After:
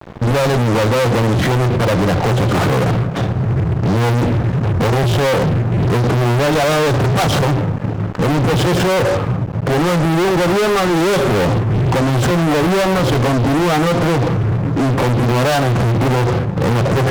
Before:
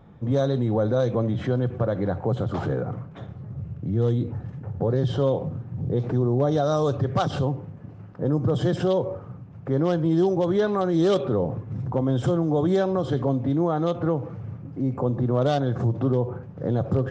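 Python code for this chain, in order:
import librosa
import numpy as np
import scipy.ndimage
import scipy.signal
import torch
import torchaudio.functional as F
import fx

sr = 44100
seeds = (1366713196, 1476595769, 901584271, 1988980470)

y = fx.doubler(x, sr, ms=17.0, db=-13.0)
y = fx.fuzz(y, sr, gain_db=39.0, gate_db=-47.0)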